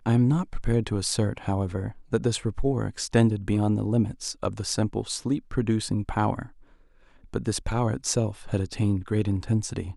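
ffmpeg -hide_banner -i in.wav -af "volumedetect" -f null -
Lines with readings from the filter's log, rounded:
mean_volume: -25.9 dB
max_volume: -5.6 dB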